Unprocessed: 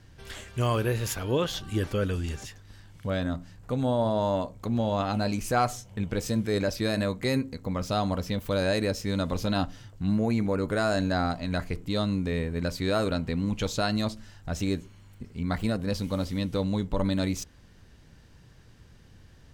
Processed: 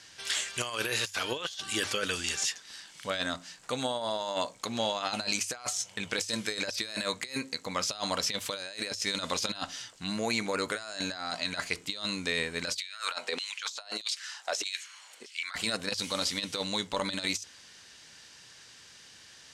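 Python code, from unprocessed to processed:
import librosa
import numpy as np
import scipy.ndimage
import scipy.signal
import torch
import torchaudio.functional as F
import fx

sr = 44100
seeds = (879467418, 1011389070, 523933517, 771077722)

y = fx.filter_lfo_highpass(x, sr, shape='saw_down', hz=1.6, low_hz=360.0, high_hz=3500.0, q=2.4, at=(12.76, 15.55))
y = fx.weighting(y, sr, curve='ITU-R 468')
y = fx.over_compress(y, sr, threshold_db=-32.0, ratio=-0.5)
y = fx.hum_notches(y, sr, base_hz=50, count=2)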